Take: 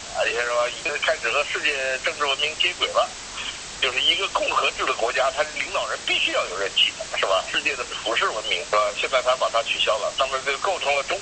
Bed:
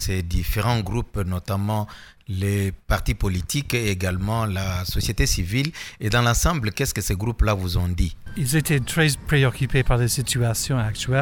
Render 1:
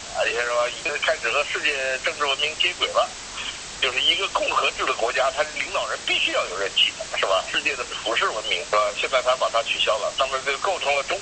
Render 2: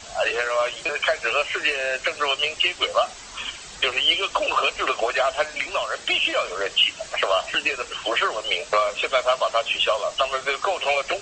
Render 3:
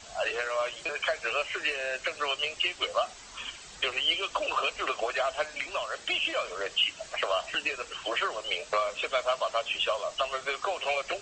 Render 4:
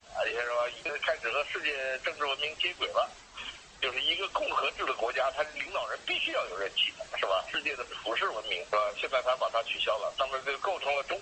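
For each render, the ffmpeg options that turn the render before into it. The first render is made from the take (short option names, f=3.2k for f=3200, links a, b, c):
-af anull
-af "afftdn=nr=8:nf=-36"
-af "volume=-7.5dB"
-af "agate=range=-33dB:threshold=-43dB:ratio=3:detection=peak,lowpass=f=3.7k:p=1"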